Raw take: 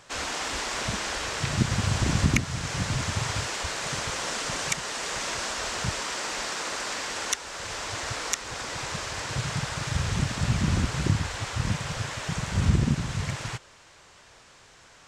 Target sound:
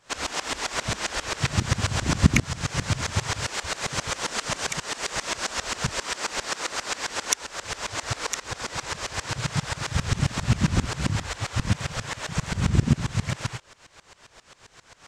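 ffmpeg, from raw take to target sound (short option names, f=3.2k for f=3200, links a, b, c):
-af "aeval=exprs='val(0)*pow(10,-21*if(lt(mod(-7.5*n/s,1),2*abs(-7.5)/1000),1-mod(-7.5*n/s,1)/(2*abs(-7.5)/1000),(mod(-7.5*n/s,1)-2*abs(-7.5)/1000)/(1-2*abs(-7.5)/1000))/20)':c=same,volume=8dB"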